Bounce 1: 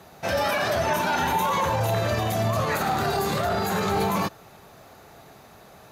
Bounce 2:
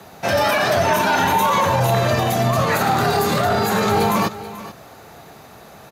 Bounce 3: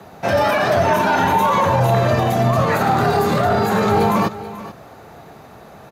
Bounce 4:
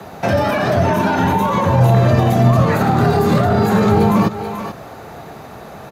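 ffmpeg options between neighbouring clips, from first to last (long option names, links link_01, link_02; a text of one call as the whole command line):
ffmpeg -i in.wav -af "aecho=1:1:434:0.168,afreqshift=13,volume=6.5dB" out.wav
ffmpeg -i in.wav -af "highshelf=frequency=2400:gain=-9.5,volume=2.5dB" out.wav
ffmpeg -i in.wav -filter_complex "[0:a]acrossover=split=350[link_01][link_02];[link_02]acompressor=threshold=-26dB:ratio=3[link_03];[link_01][link_03]amix=inputs=2:normalize=0,volume=6.5dB" out.wav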